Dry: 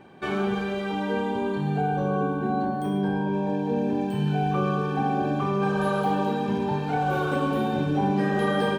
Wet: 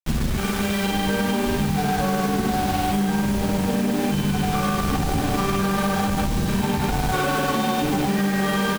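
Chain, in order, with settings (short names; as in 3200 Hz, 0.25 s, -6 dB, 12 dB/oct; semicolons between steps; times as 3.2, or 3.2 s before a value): opening faded in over 1.37 s; wind noise 100 Hz -24 dBFS; feedback echo 0.106 s, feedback 38%, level -9 dB; in parallel at -6 dB: fuzz box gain 28 dB, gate -34 dBFS; on the sum: grains 0.1 s, pitch spread up and down by 0 st; limiter -13 dBFS, peak gain reduction 10.5 dB; bell 210 Hz +6 dB 0.84 oct; notches 60/120/180 Hz; requantised 6-bit, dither none; tilt shelf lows -5 dB; compressor, threshold -24 dBFS, peak gain reduction 8.5 dB; gain +5 dB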